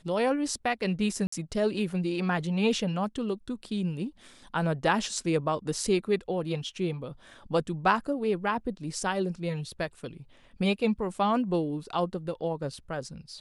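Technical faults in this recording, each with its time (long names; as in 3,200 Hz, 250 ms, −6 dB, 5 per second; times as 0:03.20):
0:01.27–0:01.32: drop-out 54 ms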